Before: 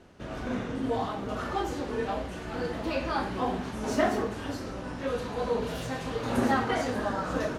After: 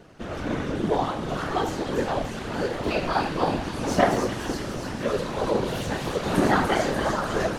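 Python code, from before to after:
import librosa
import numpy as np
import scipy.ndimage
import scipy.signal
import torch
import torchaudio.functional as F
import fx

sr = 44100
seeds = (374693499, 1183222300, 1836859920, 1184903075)

y = fx.whisperise(x, sr, seeds[0])
y = fx.echo_wet_highpass(y, sr, ms=293, feedback_pct=64, hz=3100.0, wet_db=-4)
y = y * 10.0 ** (5.0 / 20.0)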